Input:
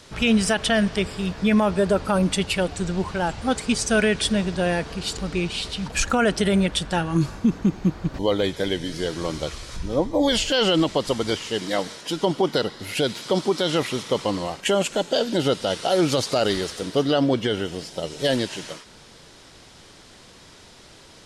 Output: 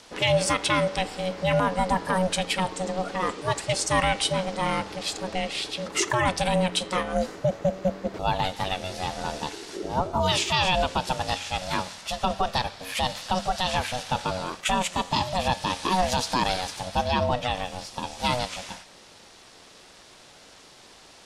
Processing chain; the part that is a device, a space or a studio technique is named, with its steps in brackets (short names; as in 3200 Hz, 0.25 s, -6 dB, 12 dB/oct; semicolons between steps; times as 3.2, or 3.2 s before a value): alien voice (ring modulator 370 Hz; flange 0.23 Hz, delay 9.9 ms, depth 1.4 ms, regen +88%); low shelf 340 Hz -6 dB; gain +6 dB